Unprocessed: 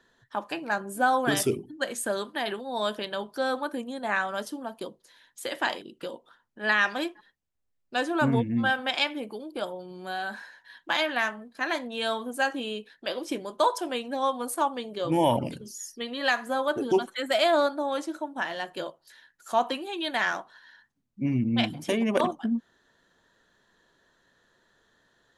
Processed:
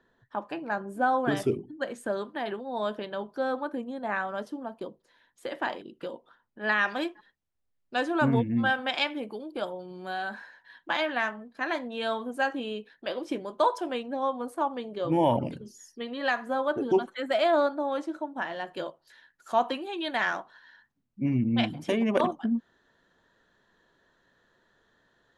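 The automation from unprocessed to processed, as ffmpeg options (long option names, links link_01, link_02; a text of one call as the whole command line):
ffmpeg -i in.wav -af "asetnsamples=nb_out_samples=441:pad=0,asendcmd='5.79 lowpass f 2000;6.88 lowpass f 3700;10.29 lowpass f 2200;14.03 lowpass f 1000;14.71 lowpass f 1700;18.67 lowpass f 3100',lowpass=frequency=1200:poles=1" out.wav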